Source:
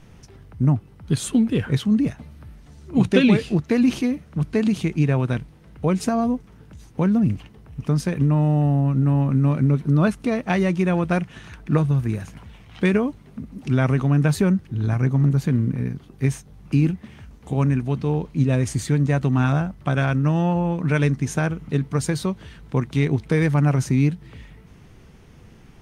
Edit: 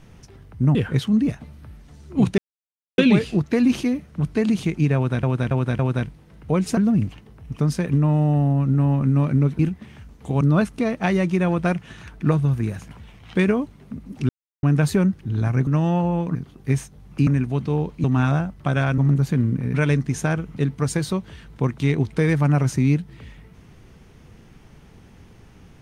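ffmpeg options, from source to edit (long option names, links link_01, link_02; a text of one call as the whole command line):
ffmpeg -i in.wav -filter_complex "[0:a]asplit=17[link_01][link_02][link_03][link_04][link_05][link_06][link_07][link_08][link_09][link_10][link_11][link_12][link_13][link_14][link_15][link_16][link_17];[link_01]atrim=end=0.752[link_18];[link_02]atrim=start=1.528:end=3.16,asetpts=PTS-STARTPTS,afade=type=out:start_time=1.628:duration=0.004:curve=hsin,apad=pad_dur=0.6[link_19];[link_03]atrim=start=3.16:end=5.412,asetpts=PTS-STARTPTS,afade=type=in:duration=0.004:curve=hsin[link_20];[link_04]atrim=start=5.128:end=5.412[link_21];[link_05]atrim=start=5.128:end=5.412[link_22];[link_06]atrim=start=5.128:end=6.112[link_23];[link_07]atrim=start=7.048:end=9.872[link_24];[link_08]atrim=start=16.808:end=17.632[link_25];[link_09]atrim=start=9.868:end=13.75,asetpts=PTS-STARTPTS,afade=type=out:start_time=3.878:duration=0.004:curve=hsin[link_26];[link_10]atrim=start=13.75:end=14.09,asetpts=PTS-STARTPTS,volume=0[link_27];[link_11]atrim=start=14.09:end=15.132,asetpts=PTS-STARTPTS,afade=type=in:duration=0.004:curve=hsin[link_28];[link_12]atrim=start=20.188:end=20.872[link_29];[link_13]atrim=start=15.888:end=16.812[link_30];[link_14]atrim=start=17.628:end=18.402[link_31];[link_15]atrim=start=19.248:end=20.192[link_32];[link_16]atrim=start=15.128:end=15.892[link_33];[link_17]atrim=start=20.868[link_34];[link_19][link_20]concat=n=2:v=0:a=1[link_35];[link_18][link_35]acrossfade=duration=0.004:curve1=hsin:curve2=hsin[link_36];[link_36][link_21]acrossfade=duration=0.004:curve1=hsin:curve2=hsin[link_37];[link_37][link_22]acrossfade=duration=0.004:curve1=hsin:curve2=hsin[link_38];[link_38][link_23]acrossfade=duration=0.004:curve1=hsin:curve2=hsin[link_39];[link_39][link_24]acrossfade=duration=0.004:curve1=hsin:curve2=hsin[link_40];[link_40][link_25]acrossfade=duration=0.004:curve1=hsin:curve2=hsin[link_41];[link_26][link_27][link_28]concat=n=3:v=0:a=1[link_42];[link_41][link_42]acrossfade=duration=0.004:curve1=hsin:curve2=hsin[link_43];[link_43][link_29]acrossfade=duration=0.004:curve1=hsin:curve2=hsin[link_44];[link_44][link_30]acrossfade=duration=0.004:curve1=hsin:curve2=hsin[link_45];[link_45][link_31]acrossfade=duration=0.004:curve1=hsin:curve2=hsin[link_46];[link_46][link_32]acrossfade=duration=0.004:curve1=hsin:curve2=hsin[link_47];[link_47][link_33]acrossfade=duration=0.004:curve1=hsin:curve2=hsin[link_48];[link_48][link_34]acrossfade=duration=0.004:curve1=hsin:curve2=hsin" out.wav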